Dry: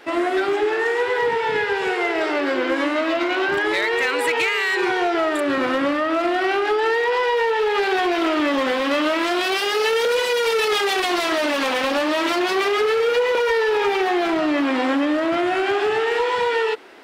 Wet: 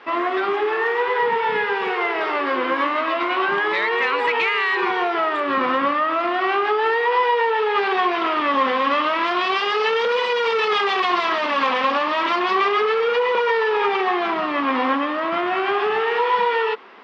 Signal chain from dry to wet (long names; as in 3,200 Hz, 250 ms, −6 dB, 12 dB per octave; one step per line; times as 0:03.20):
loudspeaker in its box 180–4,400 Hz, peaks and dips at 210 Hz +7 dB, 310 Hz −9 dB, 620 Hz −4 dB, 1,100 Hz +10 dB, 4,100 Hz −4 dB
notch filter 1,500 Hz, Q 25